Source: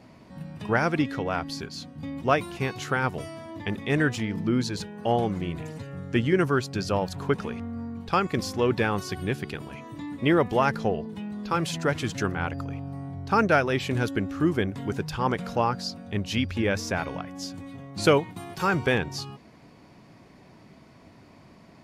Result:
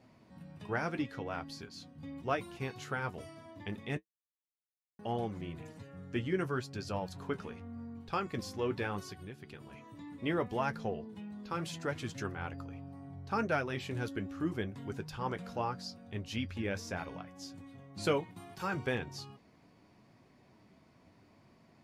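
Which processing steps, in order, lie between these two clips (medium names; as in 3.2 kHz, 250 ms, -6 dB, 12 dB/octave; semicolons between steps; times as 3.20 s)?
3.97–4.99 s: mute; 9.09–10.07 s: compression 5:1, threshold -33 dBFS, peak gain reduction 10 dB; flange 0.74 Hz, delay 7.6 ms, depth 4.1 ms, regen -50%; trim -7 dB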